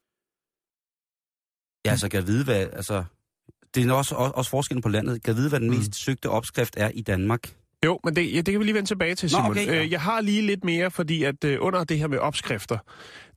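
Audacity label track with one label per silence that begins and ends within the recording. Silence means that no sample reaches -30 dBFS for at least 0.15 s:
3.050000	3.740000	silence
7.470000	7.830000	silence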